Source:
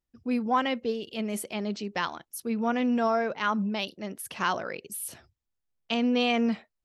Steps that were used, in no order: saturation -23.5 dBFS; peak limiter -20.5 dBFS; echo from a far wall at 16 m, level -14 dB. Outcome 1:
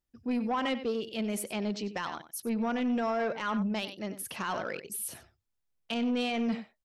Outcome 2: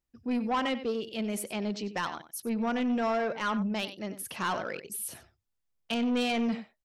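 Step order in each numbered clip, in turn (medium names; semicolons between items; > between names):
echo from a far wall > peak limiter > saturation; echo from a far wall > saturation > peak limiter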